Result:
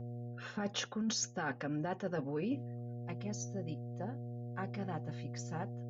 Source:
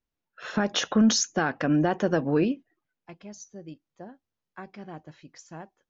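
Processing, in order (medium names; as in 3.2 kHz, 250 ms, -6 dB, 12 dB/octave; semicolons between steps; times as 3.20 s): mains buzz 120 Hz, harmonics 6, -45 dBFS -7 dB/octave; comb of notches 330 Hz; reverse; compression 20:1, threshold -35 dBFS, peak gain reduction 19.5 dB; reverse; trim +2 dB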